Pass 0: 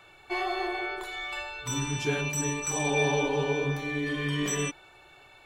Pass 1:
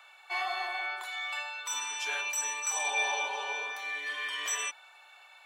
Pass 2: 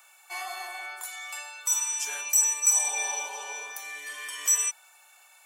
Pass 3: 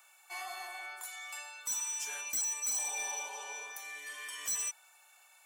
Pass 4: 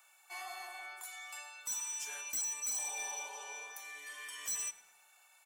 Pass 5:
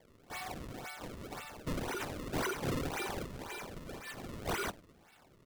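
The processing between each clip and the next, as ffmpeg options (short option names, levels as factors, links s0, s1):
-af "highpass=f=740:w=0.5412,highpass=f=740:w=1.3066"
-af "aexciter=amount=7.8:drive=5.3:freq=5500,volume=0.668"
-af "asoftclip=type=tanh:threshold=0.0562,volume=0.531"
-filter_complex "[0:a]asplit=2[s0][s1];[s1]adelay=108,lowpass=f=3900:p=1,volume=0.158,asplit=2[s2][s3];[s3]adelay=108,lowpass=f=3900:p=1,volume=0.53,asplit=2[s4][s5];[s5]adelay=108,lowpass=f=3900:p=1,volume=0.53,asplit=2[s6][s7];[s7]adelay=108,lowpass=f=3900:p=1,volume=0.53,asplit=2[s8][s9];[s9]adelay=108,lowpass=f=3900:p=1,volume=0.53[s10];[s0][s2][s4][s6][s8][s10]amix=inputs=6:normalize=0,volume=0.708"
-af "acrusher=samples=32:mix=1:aa=0.000001:lfo=1:lforange=51.2:lforate=1.9,volume=1.33"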